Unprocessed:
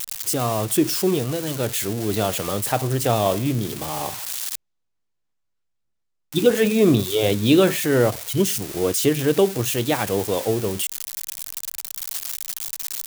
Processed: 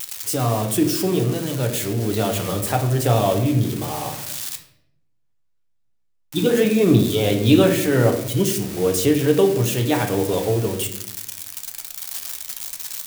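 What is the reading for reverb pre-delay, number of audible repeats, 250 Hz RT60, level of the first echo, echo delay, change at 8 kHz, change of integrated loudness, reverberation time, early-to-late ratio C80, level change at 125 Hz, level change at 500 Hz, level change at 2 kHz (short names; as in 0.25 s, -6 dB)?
7 ms, none, 1.2 s, none, none, -1.0 dB, +1.5 dB, 0.75 s, 11.5 dB, +4.5 dB, +1.0 dB, 0.0 dB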